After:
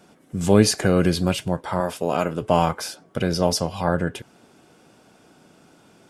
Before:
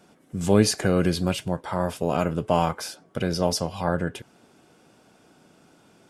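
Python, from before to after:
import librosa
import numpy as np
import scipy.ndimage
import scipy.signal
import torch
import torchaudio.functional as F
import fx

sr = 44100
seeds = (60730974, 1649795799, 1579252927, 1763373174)

y = fx.highpass(x, sr, hz=260.0, slope=6, at=(1.8, 2.42))
y = y * 10.0 ** (3.0 / 20.0)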